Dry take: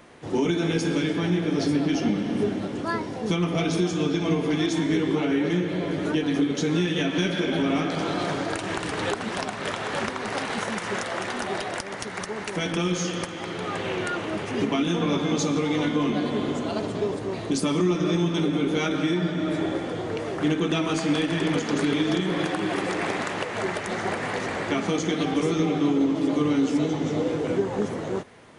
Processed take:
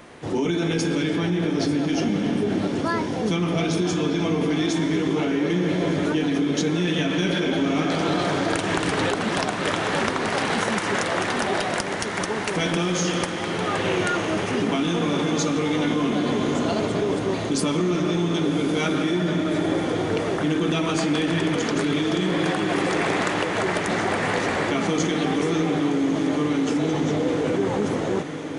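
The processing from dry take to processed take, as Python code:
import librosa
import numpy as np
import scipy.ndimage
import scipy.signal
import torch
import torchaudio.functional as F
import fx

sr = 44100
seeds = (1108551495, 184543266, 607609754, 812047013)

p1 = fx.over_compress(x, sr, threshold_db=-28.0, ratio=-1.0)
p2 = x + (p1 * librosa.db_to_amplitude(1.0))
p3 = fx.echo_diffused(p2, sr, ms=1183, feedback_pct=74, wet_db=-12)
y = p3 * librosa.db_to_amplitude(-3.0)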